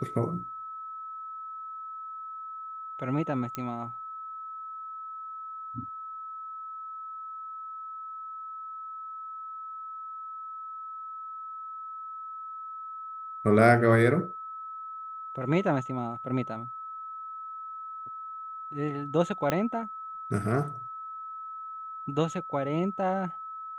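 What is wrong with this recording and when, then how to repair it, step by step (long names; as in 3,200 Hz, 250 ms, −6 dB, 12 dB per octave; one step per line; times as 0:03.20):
whistle 1,300 Hz −37 dBFS
0:03.55: click −18 dBFS
0:19.50: click −12 dBFS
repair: click removal
notch filter 1,300 Hz, Q 30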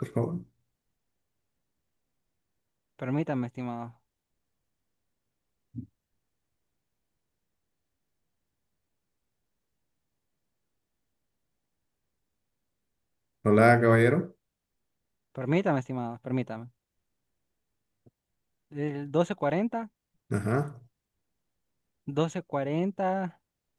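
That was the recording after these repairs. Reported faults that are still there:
0:19.50: click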